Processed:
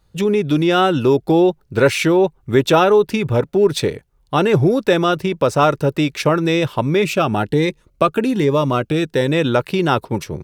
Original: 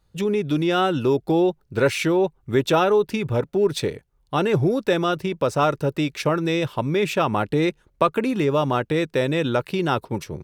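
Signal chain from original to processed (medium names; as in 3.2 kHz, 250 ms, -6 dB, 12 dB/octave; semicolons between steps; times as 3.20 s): 7.02–9.27 s: Shepard-style phaser rising 1.2 Hz; trim +5.5 dB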